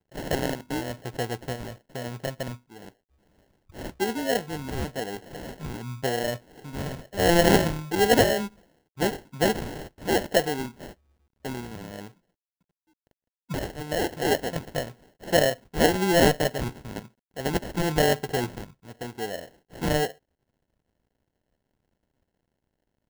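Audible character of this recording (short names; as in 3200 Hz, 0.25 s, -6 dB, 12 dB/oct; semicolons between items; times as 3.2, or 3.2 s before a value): a quantiser's noise floor 12-bit, dither none; phasing stages 4, 1 Hz, lowest notch 560–2800 Hz; aliases and images of a low sample rate 1200 Hz, jitter 0%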